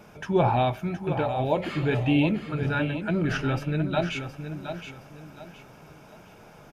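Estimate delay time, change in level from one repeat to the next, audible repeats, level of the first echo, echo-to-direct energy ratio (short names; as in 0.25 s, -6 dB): 0.718 s, -10.0 dB, 3, -9.0 dB, -8.5 dB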